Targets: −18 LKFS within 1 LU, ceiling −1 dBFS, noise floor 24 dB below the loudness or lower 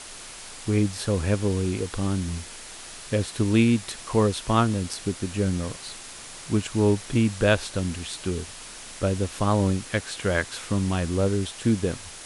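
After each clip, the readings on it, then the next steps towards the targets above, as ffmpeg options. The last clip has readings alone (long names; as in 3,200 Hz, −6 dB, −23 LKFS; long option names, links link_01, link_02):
background noise floor −41 dBFS; target noise floor −50 dBFS; integrated loudness −25.5 LKFS; sample peak −6.0 dBFS; target loudness −18.0 LKFS
→ -af "afftdn=noise_reduction=9:noise_floor=-41"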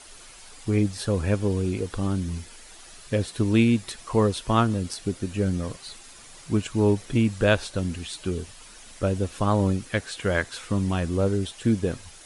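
background noise floor −47 dBFS; target noise floor −50 dBFS
→ -af "afftdn=noise_reduction=6:noise_floor=-47"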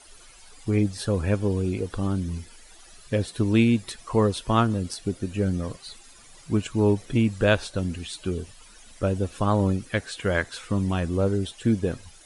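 background noise floor −50 dBFS; integrated loudness −25.5 LKFS; sample peak −6.0 dBFS; target loudness −18.0 LKFS
→ -af "volume=7.5dB,alimiter=limit=-1dB:level=0:latency=1"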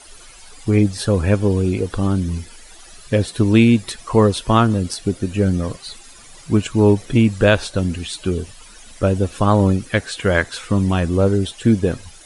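integrated loudness −18.0 LKFS; sample peak −1.0 dBFS; background noise floor −43 dBFS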